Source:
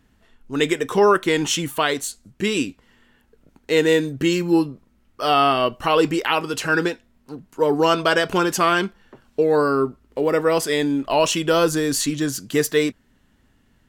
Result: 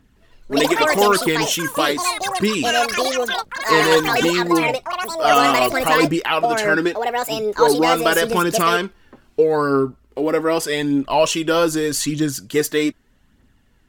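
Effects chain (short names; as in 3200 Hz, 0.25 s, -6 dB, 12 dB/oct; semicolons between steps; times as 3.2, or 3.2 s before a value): phaser 0.82 Hz, delay 3.9 ms, feedback 40%; echoes that change speed 0.164 s, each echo +7 st, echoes 3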